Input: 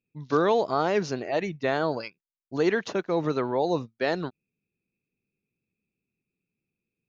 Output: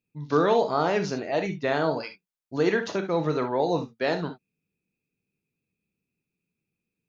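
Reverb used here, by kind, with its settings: gated-style reverb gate 90 ms flat, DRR 6 dB

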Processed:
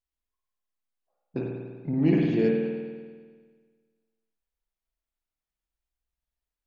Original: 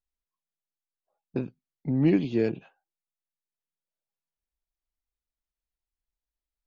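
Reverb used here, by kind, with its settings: spring tank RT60 1.6 s, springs 49 ms, chirp 60 ms, DRR -1.5 dB; trim -2 dB

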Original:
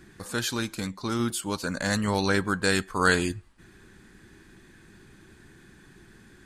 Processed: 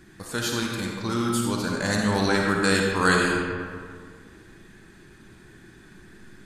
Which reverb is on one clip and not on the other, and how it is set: algorithmic reverb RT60 2 s, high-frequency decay 0.55×, pre-delay 15 ms, DRR -0.5 dB

